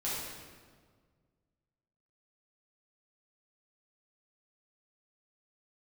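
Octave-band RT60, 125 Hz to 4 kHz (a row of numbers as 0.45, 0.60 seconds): 2.3, 2.0, 1.8, 1.6, 1.3, 1.2 seconds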